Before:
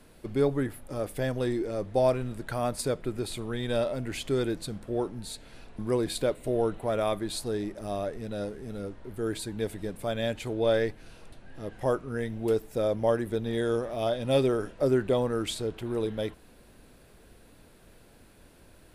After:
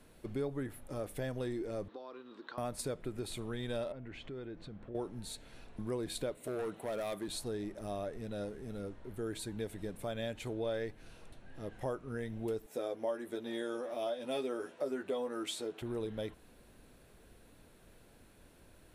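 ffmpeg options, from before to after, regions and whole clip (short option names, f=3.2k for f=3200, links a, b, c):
-filter_complex "[0:a]asettb=1/sr,asplit=3[a][b][c];[a]atrim=end=1.884[d];[b]atrim=start=1.88:end=2.58,asetpts=PTS-STARTPTS,afade=t=in:d=0.004:c=qsin,afade=t=out:st=0.696:d=0.004:c=qsin,acompressor=threshold=-36dB:ratio=8:attack=3.2:release=140:knee=1:detection=peak,highpass=f=280:w=0.5412,highpass=f=280:w=1.3066,equalizer=f=310:t=q:w=4:g=3,equalizer=f=650:t=q:w=4:g=-9,equalizer=f=1.1k:t=q:w=4:g=9,equalizer=f=2.2k:t=q:w=4:g=-6,equalizer=f=3.9k:t=q:w=4:g=7,lowpass=f=4.8k:w=0.5412,lowpass=f=4.8k:w=1.3066[e];[c]atrim=start=2.576[f];[d][e]acrossfade=d=0.004:c1=hsin:c2=qsin[g];[g][f]acrossfade=d=0.004:c1=qsin:c2=hsin,asettb=1/sr,asplit=3[h][i][j];[h]atrim=end=3.924[k];[i]atrim=start=3.92:end=4.95,asetpts=PTS-STARTPTS,afade=t=in:d=0.004:c=qsin,afade=t=out:st=1.026:d=0.004:c=qsin,lowpass=2.7k,acompressor=threshold=-40dB:ratio=3:attack=3.2:release=140:knee=1:detection=peak[l];[j]atrim=start=4.946[m];[k][l]acrossfade=d=0.004:c1=hsin:c2=qsin[n];[n][m]acrossfade=d=0.004:c1=qsin:c2=hsin,asettb=1/sr,asplit=3[o][p][q];[o]atrim=end=6.374[r];[p]atrim=start=6.37:end=7.28,asetpts=PTS-STARTPTS,afade=t=in:d=0.004:c=qsin,afade=t=out:st=0.906:d=0.004:c=qsin,highpass=160,highshelf=f=6.3k:g=7,asoftclip=type=hard:threshold=-26dB[s];[q]atrim=start=7.276[t];[r][s]acrossfade=d=0.004:c1=hsin:c2=qsin[u];[u][t]acrossfade=d=0.004:c1=qsin:c2=hsin,asettb=1/sr,asplit=3[v][w][x];[v]atrim=end=12.664[y];[w]atrim=start=12.66:end=15.82,asetpts=PTS-STARTPTS,afade=t=in:d=0.004:c=qsin,afade=t=out:st=3.156:d=0.004:c=qsin,highpass=290,asplit=2[z][aa];[aa]adelay=12,volume=-3.5dB[ab];[z][ab]amix=inputs=2:normalize=0,atrim=end_sample=139356[ac];[x]atrim=start=15.816[ad];[y][ac]acrossfade=d=0.004:c1=hsin:c2=qsin[ae];[ae][ad]acrossfade=d=0.004:c1=qsin:c2=hsin,bandreject=f=4.8k:w=17,acompressor=threshold=-31dB:ratio=2.5,volume=-5dB"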